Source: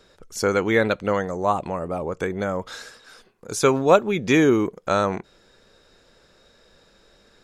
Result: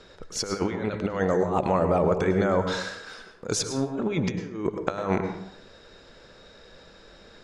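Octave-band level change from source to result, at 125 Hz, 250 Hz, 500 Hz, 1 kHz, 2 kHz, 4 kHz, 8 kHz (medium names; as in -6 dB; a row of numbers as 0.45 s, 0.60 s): 0.0 dB, -4.0 dB, -4.5 dB, -4.5 dB, -7.5 dB, -1.0 dB, -0.5 dB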